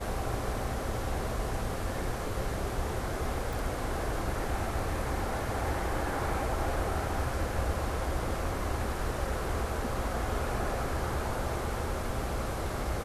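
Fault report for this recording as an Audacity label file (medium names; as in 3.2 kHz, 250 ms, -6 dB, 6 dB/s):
3.530000	3.530000	pop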